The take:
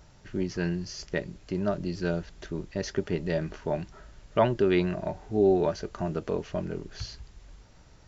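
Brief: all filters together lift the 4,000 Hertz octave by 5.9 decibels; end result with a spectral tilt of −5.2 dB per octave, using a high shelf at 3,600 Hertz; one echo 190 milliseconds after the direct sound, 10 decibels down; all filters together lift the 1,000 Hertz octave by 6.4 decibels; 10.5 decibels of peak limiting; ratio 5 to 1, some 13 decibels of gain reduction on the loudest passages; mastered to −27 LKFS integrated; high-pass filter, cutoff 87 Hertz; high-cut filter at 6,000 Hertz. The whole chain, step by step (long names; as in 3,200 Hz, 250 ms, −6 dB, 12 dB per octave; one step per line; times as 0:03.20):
high-pass filter 87 Hz
low-pass filter 6,000 Hz
parametric band 1,000 Hz +8 dB
high-shelf EQ 3,600 Hz +3 dB
parametric band 4,000 Hz +6 dB
downward compressor 5 to 1, threshold −28 dBFS
brickwall limiter −22.5 dBFS
single-tap delay 190 ms −10 dB
level +8.5 dB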